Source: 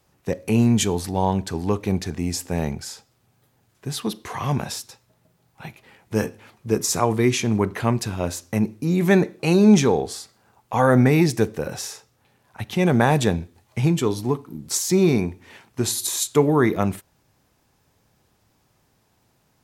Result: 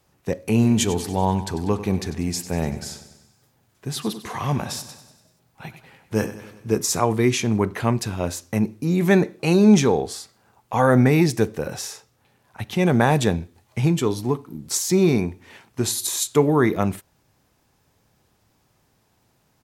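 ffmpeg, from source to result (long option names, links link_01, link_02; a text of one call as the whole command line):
ffmpeg -i in.wav -filter_complex "[0:a]asplit=3[link_01][link_02][link_03];[link_01]afade=type=out:start_time=0.62:duration=0.02[link_04];[link_02]aecho=1:1:96|192|288|384|480|576:0.224|0.128|0.0727|0.0415|0.0236|0.0135,afade=type=in:start_time=0.62:duration=0.02,afade=type=out:start_time=6.78:duration=0.02[link_05];[link_03]afade=type=in:start_time=6.78:duration=0.02[link_06];[link_04][link_05][link_06]amix=inputs=3:normalize=0" out.wav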